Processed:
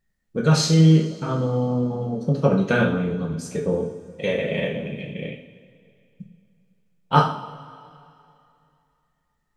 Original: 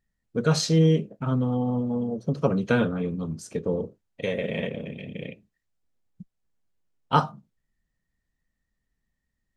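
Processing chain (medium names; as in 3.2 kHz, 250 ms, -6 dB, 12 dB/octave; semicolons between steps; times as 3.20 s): two-slope reverb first 0.5 s, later 2.7 s, from -18 dB, DRR -1 dB; trim +1.5 dB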